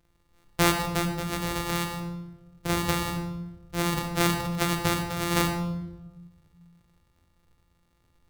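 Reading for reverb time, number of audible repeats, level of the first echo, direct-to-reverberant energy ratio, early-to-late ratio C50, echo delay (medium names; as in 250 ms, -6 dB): 1.1 s, no echo, no echo, 4.5 dB, 6.5 dB, no echo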